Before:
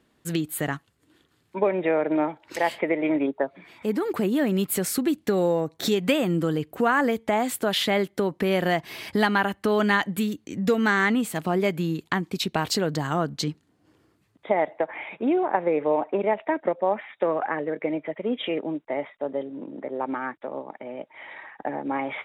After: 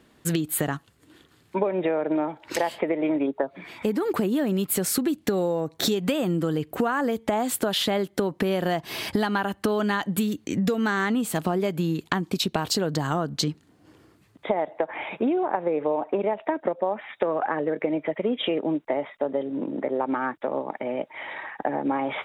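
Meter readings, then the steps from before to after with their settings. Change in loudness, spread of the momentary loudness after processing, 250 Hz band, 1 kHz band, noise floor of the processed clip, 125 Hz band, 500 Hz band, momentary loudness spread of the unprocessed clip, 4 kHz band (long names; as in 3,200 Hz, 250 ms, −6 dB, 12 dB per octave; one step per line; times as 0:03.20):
−1.0 dB, 6 LU, 0.0 dB, −1.0 dB, −60 dBFS, +0.5 dB, −1.0 dB, 9 LU, +0.5 dB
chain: dynamic equaliser 2,100 Hz, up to −7 dB, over −44 dBFS, Q 2.6
downward compressor 6 to 1, threshold −29 dBFS, peak gain reduction 12 dB
level +7.5 dB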